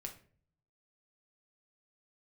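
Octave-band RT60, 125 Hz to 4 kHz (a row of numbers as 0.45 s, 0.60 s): 0.95 s, 0.75 s, 0.55 s, 0.40 s, 0.40 s, 0.30 s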